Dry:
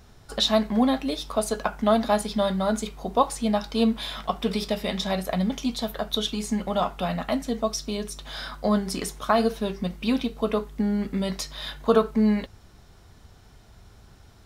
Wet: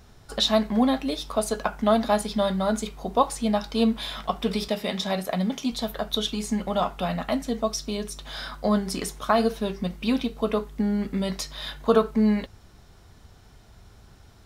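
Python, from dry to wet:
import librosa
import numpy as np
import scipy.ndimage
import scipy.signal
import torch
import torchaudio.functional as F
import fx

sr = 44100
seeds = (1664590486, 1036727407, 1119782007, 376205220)

y = fx.highpass(x, sr, hz=130.0, slope=12, at=(4.68, 5.72))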